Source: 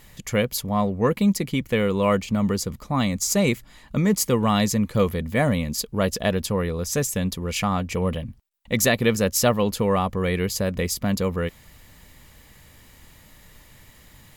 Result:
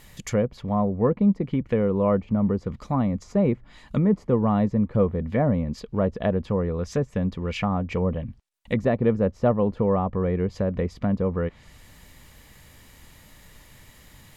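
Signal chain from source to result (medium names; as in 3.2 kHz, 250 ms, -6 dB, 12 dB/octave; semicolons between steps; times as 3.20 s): low-pass that closes with the level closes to 900 Hz, closed at -19.5 dBFS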